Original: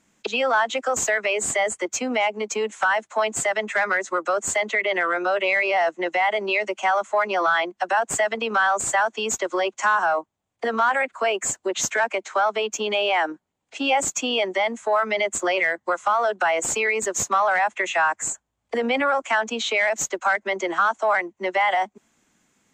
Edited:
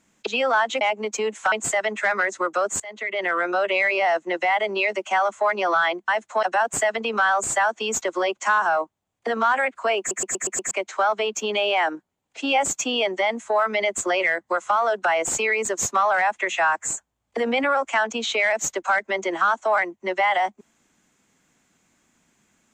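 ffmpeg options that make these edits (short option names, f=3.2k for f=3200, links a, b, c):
-filter_complex "[0:a]asplit=12[a][b][c][d][e][f][g][h][i][j][k][l];[a]atrim=end=0.812[m];[b]atrim=start=2.178:end=2.892[n];[c]atrim=start=3.238:end=4.52,asetpts=PTS-STARTPTS,afade=t=out:st=1.278:d=0.004:c=hsin:silence=0.0668344[o];[d]atrim=start=4.52:end=7.802,asetpts=PTS-STARTPTS,afade=t=in:d=0.56:silence=0.0668344[p];[e]atrim=start=2.888:end=3.242[q];[f]atrim=start=7.798:end=11.482[r];[g]atrim=start=11.358:end=11.482[s];[h]atrim=start=11.358:end=11.482[t];[i]atrim=start=11.358:end=11.482[u];[j]atrim=start=11.358:end=11.482[v];[k]atrim=start=11.358:end=11.482[w];[l]atrim=start=12.078[x];[m][n]acrossfade=d=0.004:c1=hsin:c2=hsin[y];[o][p]concat=n=2:v=0:a=1[z];[y][z]acrossfade=d=0.004:c1=hsin:c2=hsin[aa];[aa][q]acrossfade=d=0.004:c1=hsin:c2=hsin[ab];[ab][r]acrossfade=d=0.004:c1=hsin:c2=hsin[ac];[ac][s]acrossfade=d=0.004:c1=hsin:c2=hsin[ad];[ad][t]acrossfade=d=0.004:c1=hsin:c2=hsin[ae];[ae][u]acrossfade=d=0.004:c1=hsin:c2=hsin[af];[af][v]acrossfade=d=0.004:c1=hsin:c2=hsin[ag];[ag][w]acrossfade=d=0.004:c1=hsin:c2=hsin[ah];[ah][x]acrossfade=d=0.004:c1=hsin:c2=hsin"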